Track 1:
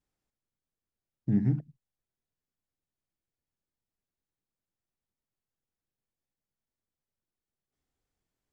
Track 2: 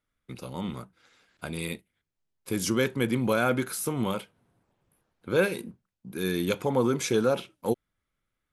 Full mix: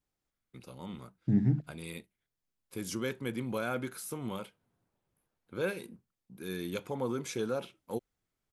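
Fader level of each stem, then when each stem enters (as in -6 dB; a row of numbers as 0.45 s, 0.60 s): -0.5 dB, -9.5 dB; 0.00 s, 0.25 s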